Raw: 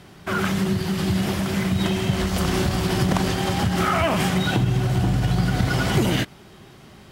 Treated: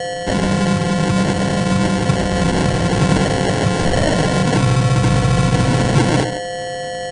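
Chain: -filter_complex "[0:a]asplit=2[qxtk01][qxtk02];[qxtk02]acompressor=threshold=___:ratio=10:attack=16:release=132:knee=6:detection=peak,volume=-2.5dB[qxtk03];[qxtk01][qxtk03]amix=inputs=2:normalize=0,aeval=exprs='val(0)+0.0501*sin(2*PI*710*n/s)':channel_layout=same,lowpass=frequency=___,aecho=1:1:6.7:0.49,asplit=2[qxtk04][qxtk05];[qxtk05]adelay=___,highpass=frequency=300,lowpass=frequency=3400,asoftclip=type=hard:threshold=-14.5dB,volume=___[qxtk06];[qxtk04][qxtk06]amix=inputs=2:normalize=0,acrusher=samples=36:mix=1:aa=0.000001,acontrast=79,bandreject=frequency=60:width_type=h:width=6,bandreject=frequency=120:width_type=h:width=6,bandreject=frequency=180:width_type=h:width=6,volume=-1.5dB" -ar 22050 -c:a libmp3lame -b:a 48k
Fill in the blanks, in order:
-33dB, 2200, 140, -7dB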